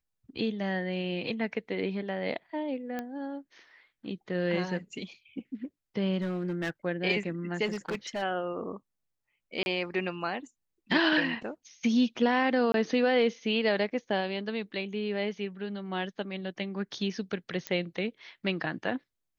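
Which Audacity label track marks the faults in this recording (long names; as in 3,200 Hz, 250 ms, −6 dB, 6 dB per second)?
2.990000	2.990000	click −21 dBFS
6.210000	6.700000	clipping −27 dBFS
7.650000	8.230000	clipping −28.5 dBFS
9.630000	9.660000	drop-out 31 ms
12.720000	12.740000	drop-out 22 ms
17.670000	17.670000	click −16 dBFS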